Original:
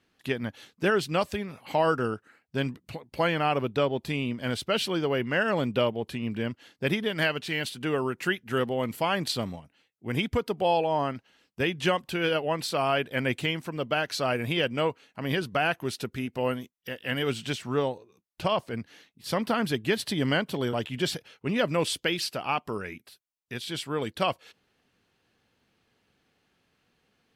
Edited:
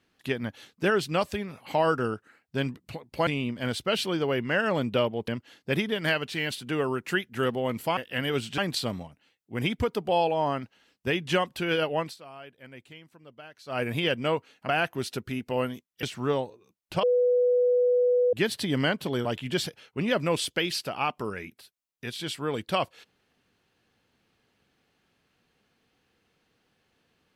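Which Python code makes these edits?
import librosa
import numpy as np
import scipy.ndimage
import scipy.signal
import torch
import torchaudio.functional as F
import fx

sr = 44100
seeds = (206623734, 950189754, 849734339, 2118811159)

y = fx.edit(x, sr, fx.cut(start_s=3.27, length_s=0.82),
    fx.cut(start_s=6.1, length_s=0.32),
    fx.fade_down_up(start_s=12.53, length_s=1.82, db=-19.5, fade_s=0.16),
    fx.cut(start_s=15.22, length_s=0.34),
    fx.move(start_s=16.9, length_s=0.61, to_s=9.11),
    fx.bleep(start_s=18.51, length_s=1.3, hz=493.0, db=-19.0), tone=tone)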